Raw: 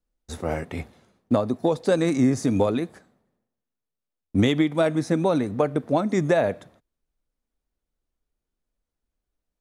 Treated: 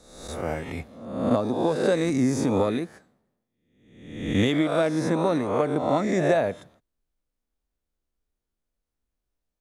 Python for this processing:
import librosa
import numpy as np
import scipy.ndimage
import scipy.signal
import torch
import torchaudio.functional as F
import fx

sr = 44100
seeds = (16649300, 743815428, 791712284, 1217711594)

y = fx.spec_swells(x, sr, rise_s=0.85)
y = y * librosa.db_to_amplitude(-3.5)